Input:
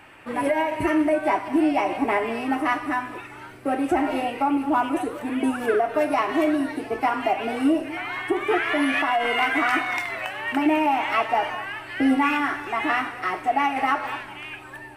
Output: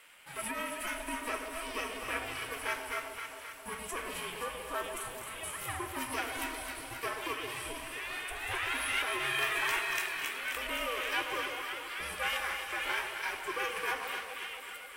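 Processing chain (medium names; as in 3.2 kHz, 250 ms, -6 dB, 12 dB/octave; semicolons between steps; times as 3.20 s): steep high-pass 300 Hz 36 dB/octave; differentiator; ring modulator 340 Hz; on a send: echo whose repeats swap between lows and highs 132 ms, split 910 Hz, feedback 79%, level -5 dB; on the sum: trim +5.5 dB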